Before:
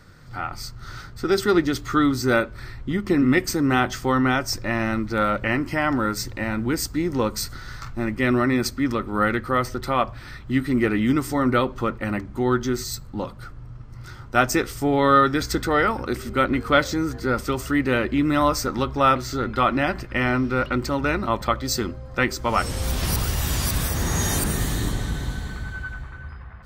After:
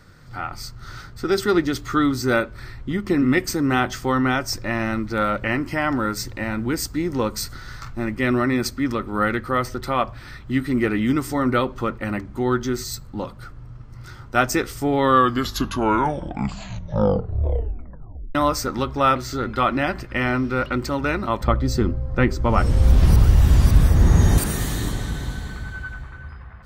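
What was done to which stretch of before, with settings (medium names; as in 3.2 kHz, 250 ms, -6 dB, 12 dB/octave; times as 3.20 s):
14.96 s: tape stop 3.39 s
21.43–24.38 s: tilt EQ -3 dB/octave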